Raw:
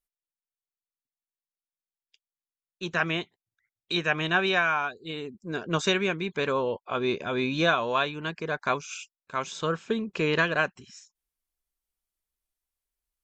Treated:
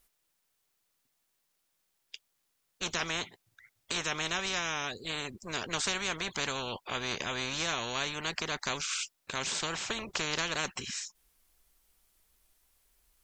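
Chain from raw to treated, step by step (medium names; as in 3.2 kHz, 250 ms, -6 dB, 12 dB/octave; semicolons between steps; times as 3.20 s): spectrum-flattening compressor 4:1; trim -5.5 dB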